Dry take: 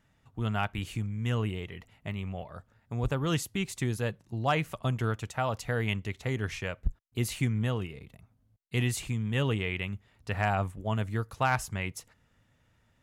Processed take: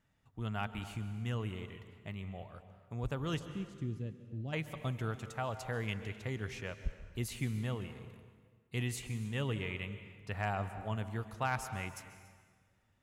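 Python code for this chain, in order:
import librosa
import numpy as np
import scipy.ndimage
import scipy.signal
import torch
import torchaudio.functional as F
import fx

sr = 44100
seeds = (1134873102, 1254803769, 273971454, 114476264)

p1 = fx.curve_eq(x, sr, hz=(320.0, 1000.0, 2800.0, 6100.0, 14000.0), db=(0, -24, -14, -16, -29), at=(3.38, 4.52), fade=0.02)
p2 = p1 + fx.echo_single(p1, sr, ms=285, db=-22.5, dry=0)
p3 = fx.rev_plate(p2, sr, seeds[0], rt60_s=1.7, hf_ratio=0.8, predelay_ms=120, drr_db=11.0)
y = F.gain(torch.from_numpy(p3), -7.5).numpy()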